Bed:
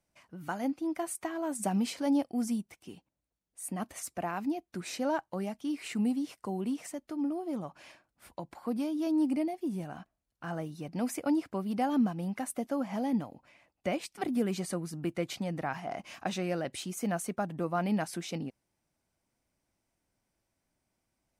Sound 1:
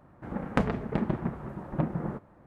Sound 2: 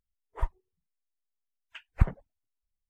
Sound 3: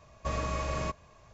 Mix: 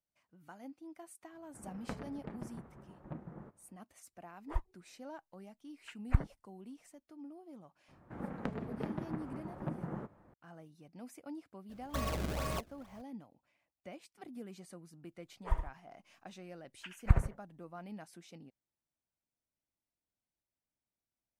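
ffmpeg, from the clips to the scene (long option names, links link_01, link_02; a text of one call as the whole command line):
ffmpeg -i bed.wav -i cue0.wav -i cue1.wav -i cue2.wav -filter_complex "[1:a]asplit=2[link_01][link_02];[2:a]asplit=2[link_03][link_04];[0:a]volume=-17dB[link_05];[link_02]acrossover=split=100|630[link_06][link_07][link_08];[link_06]acompressor=threshold=-51dB:ratio=4[link_09];[link_07]acompressor=threshold=-30dB:ratio=4[link_10];[link_08]acompressor=threshold=-40dB:ratio=4[link_11];[link_09][link_10][link_11]amix=inputs=3:normalize=0[link_12];[3:a]acrusher=samples=28:mix=1:aa=0.000001:lfo=1:lforange=44.8:lforate=2.2[link_13];[link_04]aecho=1:1:69|97|150:0.376|0.141|0.133[link_14];[link_01]atrim=end=2.46,asetpts=PTS-STARTPTS,volume=-16.5dB,afade=type=in:duration=0.004:curve=hsin,afade=type=out:start_time=2.456:duration=0.004:curve=hsin,adelay=1320[link_15];[link_03]atrim=end=2.89,asetpts=PTS-STARTPTS,volume=-5.5dB,afade=type=in:duration=0.004:curve=hsin,afade=type=out:start_time=2.886:duration=0.004:curve=hsin,adelay=182133S[link_16];[link_12]atrim=end=2.46,asetpts=PTS-STARTPTS,volume=-6dB,afade=type=in:duration=0.004:curve=hsin,afade=type=out:start_time=2.456:duration=0.004:curve=hsin,adelay=7880[link_17];[link_13]atrim=end=1.33,asetpts=PTS-STARTPTS,volume=-4dB,afade=type=in:duration=0.004:curve=hsin,afade=type=out:start_time=1.326:duration=0.004:curve=hsin,adelay=11690[link_18];[link_14]atrim=end=2.89,asetpts=PTS-STARTPTS,volume=-2.5dB,afade=type=in:duration=0.004:curve=hsin,afade=type=out:start_time=2.886:duration=0.004:curve=hsin,adelay=15090[link_19];[link_05][link_15][link_16][link_17][link_18][link_19]amix=inputs=6:normalize=0" out.wav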